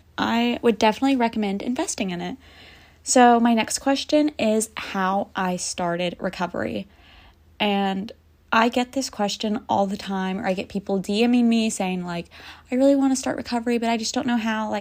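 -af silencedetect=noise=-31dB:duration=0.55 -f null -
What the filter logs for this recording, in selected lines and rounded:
silence_start: 2.34
silence_end: 3.06 | silence_duration: 0.72
silence_start: 6.82
silence_end: 7.60 | silence_duration: 0.78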